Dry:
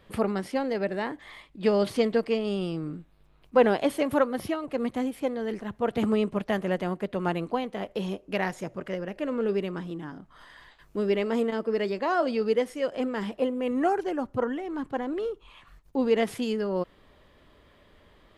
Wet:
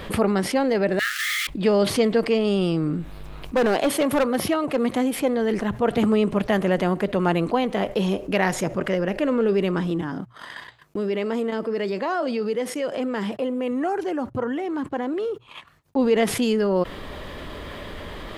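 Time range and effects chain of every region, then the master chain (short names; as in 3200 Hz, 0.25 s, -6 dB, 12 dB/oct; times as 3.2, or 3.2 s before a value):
0.99–1.47 zero-crossing step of -33 dBFS + brick-wall FIR high-pass 1200 Hz + Doppler distortion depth 0.22 ms
3.56–5.19 HPF 160 Hz 6 dB/oct + hard clip -21 dBFS
10.01–15.96 HPF 80 Hz 24 dB/oct + compressor 1.5:1, threshold -51 dBFS + gate -52 dBFS, range -40 dB
whole clip: notches 60/120 Hz; fast leveller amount 50%; gain +2.5 dB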